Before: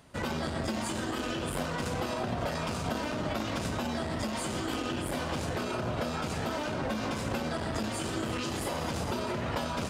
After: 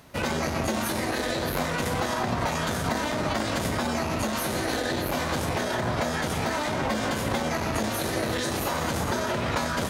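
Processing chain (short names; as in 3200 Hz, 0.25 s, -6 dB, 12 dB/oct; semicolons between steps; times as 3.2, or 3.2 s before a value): formant shift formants +5 st; gain +5.5 dB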